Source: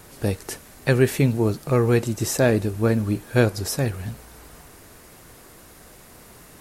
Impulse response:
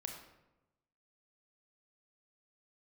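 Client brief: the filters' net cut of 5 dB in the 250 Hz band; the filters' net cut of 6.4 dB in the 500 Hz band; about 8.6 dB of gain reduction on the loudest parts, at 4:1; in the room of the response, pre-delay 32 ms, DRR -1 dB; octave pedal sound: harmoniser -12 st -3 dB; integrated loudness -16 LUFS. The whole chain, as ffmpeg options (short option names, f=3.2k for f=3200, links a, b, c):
-filter_complex "[0:a]equalizer=f=250:t=o:g=-4.5,equalizer=f=500:t=o:g=-6.5,acompressor=threshold=-27dB:ratio=4,asplit=2[a][b];[1:a]atrim=start_sample=2205,adelay=32[c];[b][c]afir=irnorm=-1:irlink=0,volume=3dB[d];[a][d]amix=inputs=2:normalize=0,asplit=2[e][f];[f]asetrate=22050,aresample=44100,atempo=2,volume=-3dB[g];[e][g]amix=inputs=2:normalize=0,volume=10.5dB"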